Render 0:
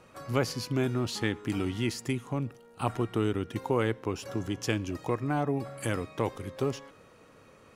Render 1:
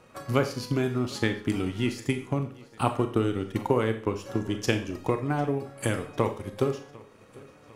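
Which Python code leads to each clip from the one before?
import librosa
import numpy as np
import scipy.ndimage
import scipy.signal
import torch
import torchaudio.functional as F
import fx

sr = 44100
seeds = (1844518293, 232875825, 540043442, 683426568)

y = fx.transient(x, sr, attack_db=6, sustain_db=-5)
y = fx.echo_feedback(y, sr, ms=750, feedback_pct=56, wet_db=-23.5)
y = fx.rev_schroeder(y, sr, rt60_s=0.43, comb_ms=28, drr_db=7.5)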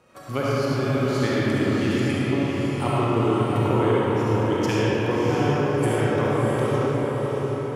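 y = scipy.signal.sosfilt(scipy.signal.butter(2, 49.0, 'highpass', fs=sr, output='sos'), x)
y = fx.echo_diffused(y, sr, ms=638, feedback_pct=43, wet_db=-4.5)
y = fx.rev_freeverb(y, sr, rt60_s=4.4, hf_ratio=0.45, predelay_ms=25, drr_db=-7.5)
y = y * librosa.db_to_amplitude(-3.5)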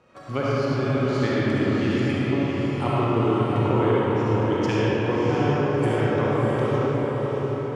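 y = fx.air_absorb(x, sr, metres=87.0)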